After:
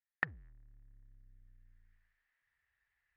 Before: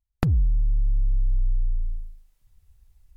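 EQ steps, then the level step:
resonant band-pass 1,800 Hz, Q 8.9
high-frequency loss of the air 150 metres
+13.0 dB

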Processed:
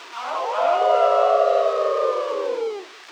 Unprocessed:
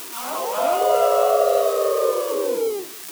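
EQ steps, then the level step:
high-pass filter 620 Hz 12 dB per octave
high-frequency loss of the air 160 metres
high-shelf EQ 7,100 Hz −8.5 dB
+4.0 dB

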